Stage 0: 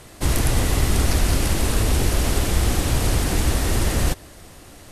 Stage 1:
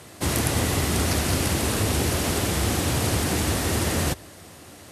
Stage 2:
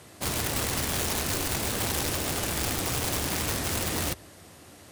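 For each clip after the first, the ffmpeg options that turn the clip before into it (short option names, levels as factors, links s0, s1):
-af "highpass=f=77:w=0.5412,highpass=f=77:w=1.3066,bandreject=f=60:t=h:w=6,bandreject=f=120:t=h:w=6"
-af "aeval=exprs='(mod(7.5*val(0)+1,2)-1)/7.5':c=same,volume=0.562"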